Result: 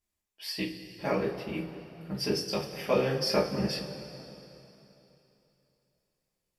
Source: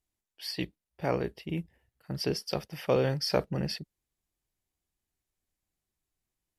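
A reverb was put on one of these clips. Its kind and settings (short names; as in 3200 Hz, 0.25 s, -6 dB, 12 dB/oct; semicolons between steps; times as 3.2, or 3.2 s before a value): two-slope reverb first 0.25 s, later 3.2 s, from -18 dB, DRR -6 dB; gain -4.5 dB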